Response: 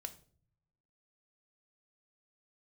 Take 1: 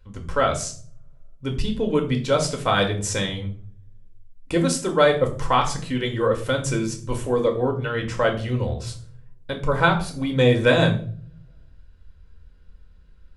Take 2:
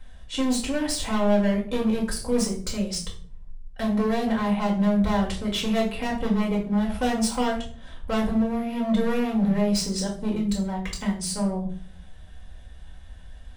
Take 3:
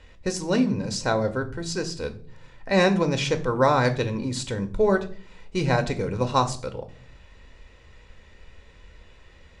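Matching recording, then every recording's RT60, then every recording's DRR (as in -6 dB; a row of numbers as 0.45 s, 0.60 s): 3; 0.50 s, 0.45 s, no single decay rate; 2.0 dB, -3.0 dB, 7.0 dB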